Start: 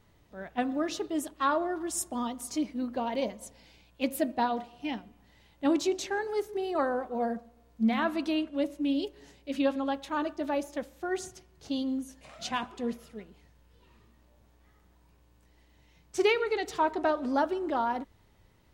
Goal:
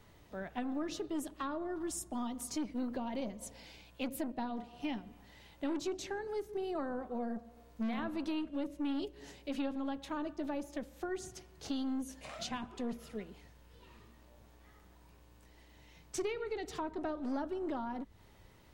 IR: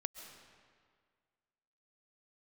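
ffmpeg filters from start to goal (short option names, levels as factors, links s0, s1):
-filter_complex "[0:a]acrossover=split=270[s0][s1];[s0]aeval=exprs='(tanh(141*val(0)+0.55)-tanh(0.55))/141':c=same[s2];[s1]acompressor=threshold=0.00631:ratio=6[s3];[s2][s3]amix=inputs=2:normalize=0,volume=1.58"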